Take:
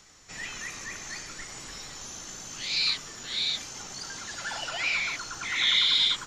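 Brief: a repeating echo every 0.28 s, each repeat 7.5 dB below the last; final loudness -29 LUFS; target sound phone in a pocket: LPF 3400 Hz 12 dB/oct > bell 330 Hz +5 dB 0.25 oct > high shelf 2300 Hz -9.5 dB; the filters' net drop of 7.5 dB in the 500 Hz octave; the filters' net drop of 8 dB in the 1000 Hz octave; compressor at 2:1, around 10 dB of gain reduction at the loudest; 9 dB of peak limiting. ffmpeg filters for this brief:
-af "equalizer=f=500:t=o:g=-8.5,equalizer=f=1k:t=o:g=-6.5,acompressor=threshold=-39dB:ratio=2,alimiter=level_in=8dB:limit=-24dB:level=0:latency=1,volume=-8dB,lowpass=3.4k,equalizer=f=330:t=o:w=0.25:g=5,highshelf=f=2.3k:g=-9.5,aecho=1:1:280|560|840|1120|1400:0.422|0.177|0.0744|0.0312|0.0131,volume=18dB"

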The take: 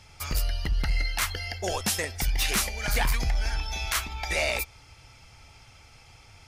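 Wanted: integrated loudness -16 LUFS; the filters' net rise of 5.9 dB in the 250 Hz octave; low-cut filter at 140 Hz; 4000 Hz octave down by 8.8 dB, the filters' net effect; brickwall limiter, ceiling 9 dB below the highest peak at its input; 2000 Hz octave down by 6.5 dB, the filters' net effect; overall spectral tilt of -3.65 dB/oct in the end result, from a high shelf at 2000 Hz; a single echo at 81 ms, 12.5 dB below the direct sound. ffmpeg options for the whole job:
-af "highpass=140,equalizer=f=250:t=o:g=9,highshelf=f=2k:g=-4.5,equalizer=f=2k:t=o:g=-3.5,equalizer=f=4k:t=o:g=-6,alimiter=limit=-23dB:level=0:latency=1,aecho=1:1:81:0.237,volume=19.5dB"

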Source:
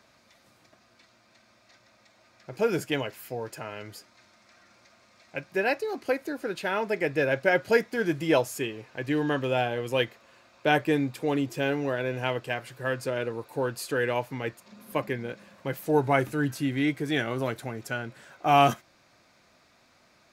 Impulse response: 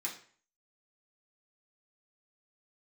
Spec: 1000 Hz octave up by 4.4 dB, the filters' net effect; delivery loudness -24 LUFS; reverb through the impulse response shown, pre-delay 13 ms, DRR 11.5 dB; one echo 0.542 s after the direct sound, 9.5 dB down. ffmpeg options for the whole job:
-filter_complex "[0:a]equalizer=f=1k:t=o:g=6.5,aecho=1:1:542:0.335,asplit=2[a][b];[1:a]atrim=start_sample=2205,adelay=13[c];[b][c]afir=irnorm=-1:irlink=0,volume=-13dB[d];[a][d]amix=inputs=2:normalize=0,volume=2dB"

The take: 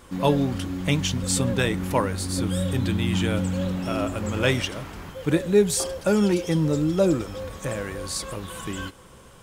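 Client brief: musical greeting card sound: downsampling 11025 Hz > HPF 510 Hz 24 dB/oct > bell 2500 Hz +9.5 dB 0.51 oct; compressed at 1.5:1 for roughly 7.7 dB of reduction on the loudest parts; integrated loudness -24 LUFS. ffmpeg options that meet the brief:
-af "acompressor=threshold=-36dB:ratio=1.5,aresample=11025,aresample=44100,highpass=f=510:w=0.5412,highpass=f=510:w=1.3066,equalizer=f=2.5k:t=o:w=0.51:g=9.5,volume=10dB"

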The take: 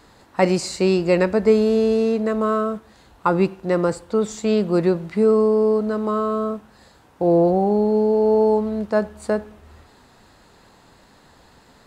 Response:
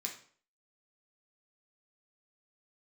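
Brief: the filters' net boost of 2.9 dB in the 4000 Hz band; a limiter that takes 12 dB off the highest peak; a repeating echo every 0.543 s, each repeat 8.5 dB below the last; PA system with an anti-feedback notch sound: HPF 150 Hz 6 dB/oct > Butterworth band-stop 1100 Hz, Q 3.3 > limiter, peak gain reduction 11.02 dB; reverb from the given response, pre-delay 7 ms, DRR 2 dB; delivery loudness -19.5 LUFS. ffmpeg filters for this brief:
-filter_complex "[0:a]equalizer=f=4k:t=o:g=3.5,alimiter=limit=-15dB:level=0:latency=1,aecho=1:1:543|1086|1629|2172:0.376|0.143|0.0543|0.0206,asplit=2[a][b];[1:a]atrim=start_sample=2205,adelay=7[c];[b][c]afir=irnorm=-1:irlink=0,volume=-1.5dB[d];[a][d]amix=inputs=2:normalize=0,highpass=f=150:p=1,asuperstop=centerf=1100:order=8:qfactor=3.3,volume=10dB,alimiter=limit=-11.5dB:level=0:latency=1"

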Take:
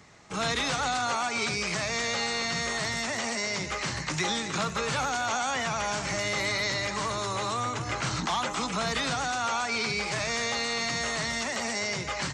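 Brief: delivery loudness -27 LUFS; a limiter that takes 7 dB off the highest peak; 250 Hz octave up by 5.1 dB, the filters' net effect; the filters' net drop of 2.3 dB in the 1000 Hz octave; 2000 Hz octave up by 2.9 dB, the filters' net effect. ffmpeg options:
-af "equalizer=f=250:t=o:g=6.5,equalizer=f=1k:t=o:g=-5,equalizer=f=2k:t=o:g=4.5,volume=2.5dB,alimiter=limit=-19dB:level=0:latency=1"

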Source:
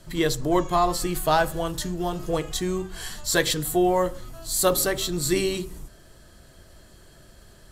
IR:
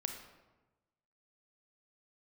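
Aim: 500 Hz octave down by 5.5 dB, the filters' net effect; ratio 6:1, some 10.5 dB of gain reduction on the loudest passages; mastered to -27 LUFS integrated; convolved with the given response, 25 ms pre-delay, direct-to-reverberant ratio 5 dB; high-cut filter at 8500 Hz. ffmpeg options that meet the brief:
-filter_complex "[0:a]lowpass=8.5k,equalizer=f=500:t=o:g=-8,acompressor=threshold=-30dB:ratio=6,asplit=2[a][b];[1:a]atrim=start_sample=2205,adelay=25[c];[b][c]afir=irnorm=-1:irlink=0,volume=-5dB[d];[a][d]amix=inputs=2:normalize=0,volume=6dB"

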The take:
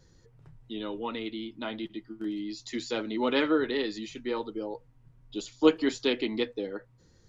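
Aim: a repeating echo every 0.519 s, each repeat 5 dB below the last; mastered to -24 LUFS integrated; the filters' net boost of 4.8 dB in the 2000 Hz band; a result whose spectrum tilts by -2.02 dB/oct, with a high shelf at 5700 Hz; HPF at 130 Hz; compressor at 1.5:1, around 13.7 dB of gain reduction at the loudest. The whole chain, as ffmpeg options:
-af "highpass=130,equalizer=f=2k:t=o:g=6.5,highshelf=f=5.7k:g=-4,acompressor=threshold=-54dB:ratio=1.5,aecho=1:1:519|1038|1557|2076|2595|3114|3633:0.562|0.315|0.176|0.0988|0.0553|0.031|0.0173,volume=16dB"

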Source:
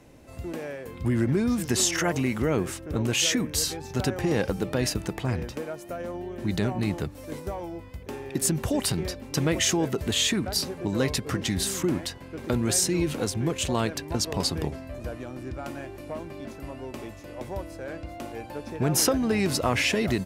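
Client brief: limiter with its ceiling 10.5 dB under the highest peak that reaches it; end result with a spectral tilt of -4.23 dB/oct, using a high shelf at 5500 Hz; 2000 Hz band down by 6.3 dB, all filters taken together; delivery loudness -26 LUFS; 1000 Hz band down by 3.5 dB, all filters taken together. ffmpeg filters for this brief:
-af "equalizer=f=1k:t=o:g=-3,equalizer=f=2k:t=o:g=-8.5,highshelf=f=5.5k:g=7,volume=3dB,alimiter=limit=-14dB:level=0:latency=1"

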